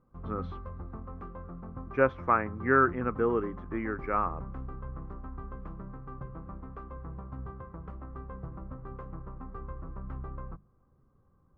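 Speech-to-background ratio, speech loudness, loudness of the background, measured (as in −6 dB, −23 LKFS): 14.5 dB, −29.0 LKFS, −43.5 LKFS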